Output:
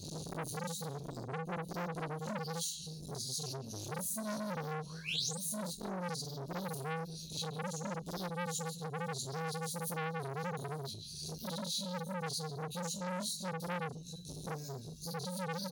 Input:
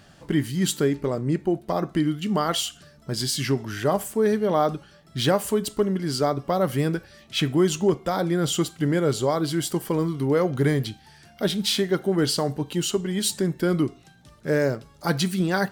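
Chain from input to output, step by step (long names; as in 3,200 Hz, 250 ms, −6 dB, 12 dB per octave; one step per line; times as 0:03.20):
low-shelf EQ 81 Hz −11.5 dB
upward compression, threshold −36 dBFS
sound drawn into the spectrogram rise, 0:04.53–0:05.34, 200–9,300 Hz −24 dBFS
elliptic band-stop filter 170–4,300 Hz, stop band 40 dB
far-end echo of a speakerphone 140 ms, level −13 dB
downward compressor 16 to 1, threshold −39 dBFS, peak gain reduction 19 dB
noise gate with hold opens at −49 dBFS
EQ curve with evenly spaced ripples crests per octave 1.5, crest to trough 11 dB
brickwall limiter −36.5 dBFS, peak gain reduction 9.5 dB
convolution reverb, pre-delay 6 ms, DRR −9 dB
saturating transformer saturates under 1,700 Hz
level +1 dB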